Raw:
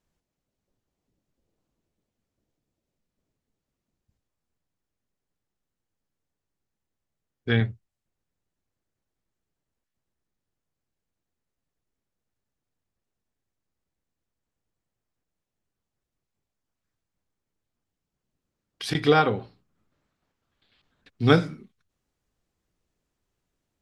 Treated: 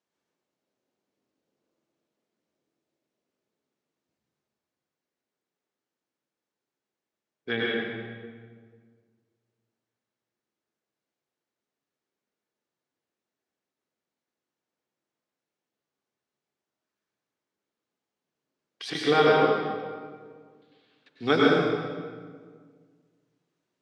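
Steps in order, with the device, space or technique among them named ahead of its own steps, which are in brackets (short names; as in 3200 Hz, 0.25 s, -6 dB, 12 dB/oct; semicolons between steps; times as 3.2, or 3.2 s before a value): supermarket ceiling speaker (BPF 290–6600 Hz; reverb RT60 1.7 s, pre-delay 92 ms, DRR -4.5 dB); gain -3.5 dB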